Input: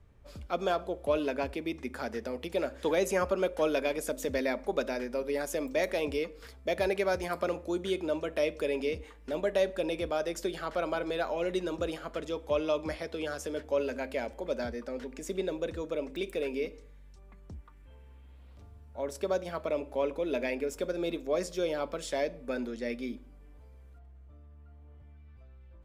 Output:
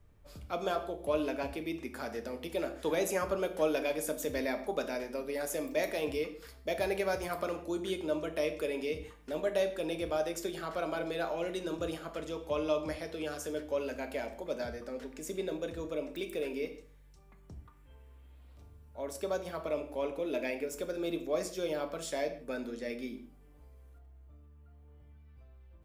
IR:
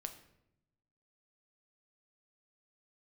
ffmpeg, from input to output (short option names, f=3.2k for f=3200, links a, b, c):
-filter_complex "[0:a]highshelf=f=9.9k:g=11[a];[1:a]atrim=start_sample=2205,afade=t=out:st=0.22:d=0.01,atrim=end_sample=10143[b];[a][b]afir=irnorm=-1:irlink=0"